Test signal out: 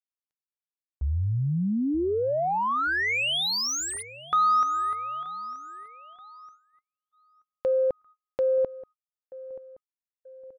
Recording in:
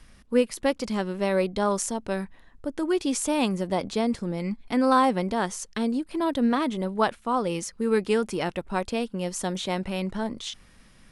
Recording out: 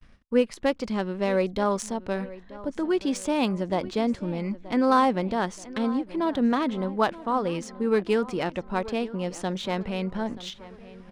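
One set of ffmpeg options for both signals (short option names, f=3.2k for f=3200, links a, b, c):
-filter_complex "[0:a]adynamicsmooth=sensitivity=2.5:basefreq=4.5k,asplit=2[a][b];[b]adelay=929,lowpass=f=3.7k:p=1,volume=-17.5dB,asplit=2[c][d];[d]adelay=929,lowpass=f=3.7k:p=1,volume=0.49,asplit=2[e][f];[f]adelay=929,lowpass=f=3.7k:p=1,volume=0.49,asplit=2[g][h];[h]adelay=929,lowpass=f=3.7k:p=1,volume=0.49[i];[a][c][e][g][i]amix=inputs=5:normalize=0,agate=range=-36dB:threshold=-51dB:ratio=16:detection=peak"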